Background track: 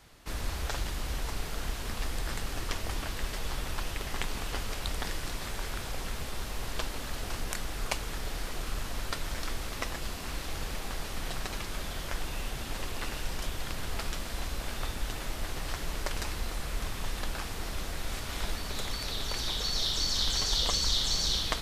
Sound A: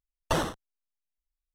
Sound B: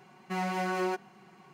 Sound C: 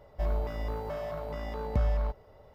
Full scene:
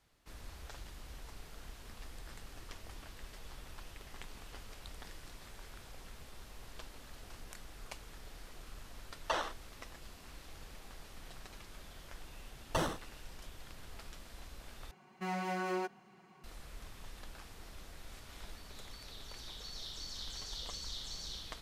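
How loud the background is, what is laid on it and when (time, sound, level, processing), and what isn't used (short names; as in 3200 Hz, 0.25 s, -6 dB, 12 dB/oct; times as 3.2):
background track -15.5 dB
8.99 add A -4.5 dB + BPF 630–5100 Hz
12.44 add A -6.5 dB
14.91 replace with B -5.5 dB
not used: C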